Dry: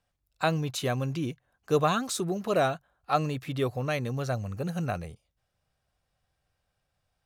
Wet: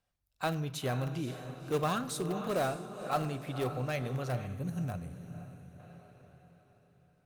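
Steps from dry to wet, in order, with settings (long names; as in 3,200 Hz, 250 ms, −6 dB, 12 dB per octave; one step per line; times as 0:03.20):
feedback delay with all-pass diffusion 521 ms, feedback 45%, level −10 dB
in parallel at −11.5 dB: wrap-around overflow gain 20.5 dB
on the sum: gain on a spectral selection 0:04.46–0:05.80, 310–5,700 Hz −6 dB
convolution reverb RT60 0.90 s, pre-delay 5 ms, DRR 12 dB
level −7 dB
Opus 48 kbit/s 48,000 Hz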